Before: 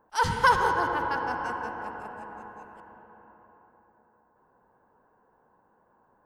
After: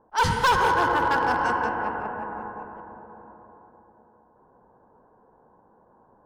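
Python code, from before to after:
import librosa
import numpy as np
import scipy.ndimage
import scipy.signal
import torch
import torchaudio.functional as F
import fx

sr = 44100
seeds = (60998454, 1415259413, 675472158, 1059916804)

p1 = fx.env_lowpass(x, sr, base_hz=930.0, full_db=-25.5)
p2 = fx.rider(p1, sr, range_db=5, speed_s=0.5)
p3 = p1 + (p2 * 10.0 ** (-2.0 / 20.0))
p4 = np.clip(10.0 ** (17.0 / 20.0) * p3, -1.0, 1.0) / 10.0 ** (17.0 / 20.0)
y = p4 * 10.0 ** (1.0 / 20.0)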